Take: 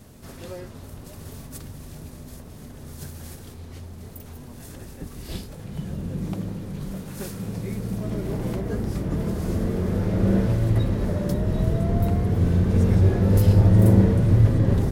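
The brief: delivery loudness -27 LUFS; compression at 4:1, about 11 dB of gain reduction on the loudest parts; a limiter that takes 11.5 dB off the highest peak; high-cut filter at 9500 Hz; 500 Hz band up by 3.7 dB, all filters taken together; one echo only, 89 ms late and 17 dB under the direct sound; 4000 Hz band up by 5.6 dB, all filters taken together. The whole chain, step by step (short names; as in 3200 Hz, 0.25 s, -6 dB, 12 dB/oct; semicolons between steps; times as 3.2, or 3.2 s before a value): LPF 9500 Hz; bell 500 Hz +4.5 dB; bell 4000 Hz +7 dB; compressor 4:1, threshold -24 dBFS; limiter -26 dBFS; echo 89 ms -17 dB; gain +8.5 dB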